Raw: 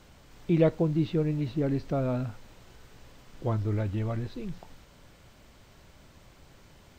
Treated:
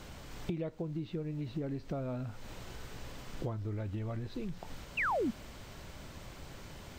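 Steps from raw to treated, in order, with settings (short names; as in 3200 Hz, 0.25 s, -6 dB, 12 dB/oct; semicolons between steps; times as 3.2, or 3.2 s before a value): compressor 12:1, threshold -41 dBFS, peak gain reduction 23.5 dB; painted sound fall, 4.97–5.31, 200–2900 Hz -38 dBFS; gain +6.5 dB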